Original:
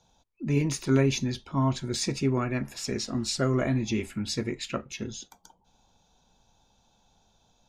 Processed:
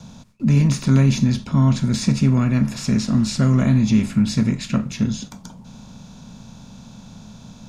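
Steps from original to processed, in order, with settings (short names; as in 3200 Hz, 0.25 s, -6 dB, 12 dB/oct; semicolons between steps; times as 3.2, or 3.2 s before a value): per-bin compression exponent 0.6; gate with hold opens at -45 dBFS; resonant low shelf 270 Hz +8 dB, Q 3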